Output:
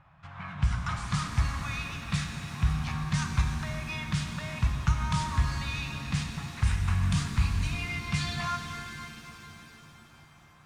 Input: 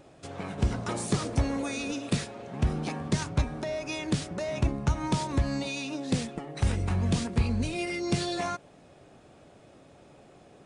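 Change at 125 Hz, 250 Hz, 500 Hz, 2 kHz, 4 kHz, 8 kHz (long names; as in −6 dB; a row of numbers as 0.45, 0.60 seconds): +1.5, −5.5, −14.5, +3.0, +0.5, −2.0 decibels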